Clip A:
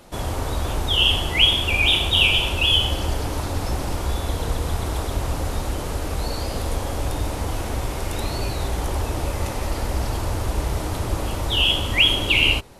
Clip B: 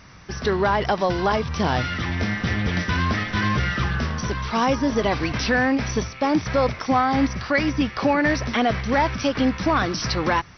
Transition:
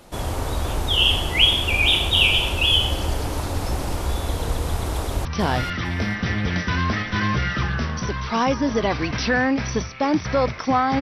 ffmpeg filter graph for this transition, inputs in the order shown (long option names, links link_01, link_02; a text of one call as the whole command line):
ffmpeg -i cue0.wav -i cue1.wav -filter_complex "[0:a]apad=whole_dur=11.01,atrim=end=11.01,atrim=end=5.252[link_01];[1:a]atrim=start=1.458:end=7.22[link_02];[link_01][link_02]acrossfade=duration=0.004:curve1=hsin:curve2=hsin,asplit=2[link_03][link_04];[link_04]afade=type=in:start_time=4.94:duration=0.01,afade=type=out:start_time=5.25:duration=0.01,aecho=0:1:450|900|1350:0.421697|0.105424|0.026356[link_05];[link_03][link_05]amix=inputs=2:normalize=0" out.wav